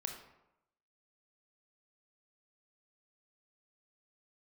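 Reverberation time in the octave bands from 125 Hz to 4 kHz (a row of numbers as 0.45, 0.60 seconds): 0.85, 0.85, 0.85, 0.90, 0.70, 0.50 seconds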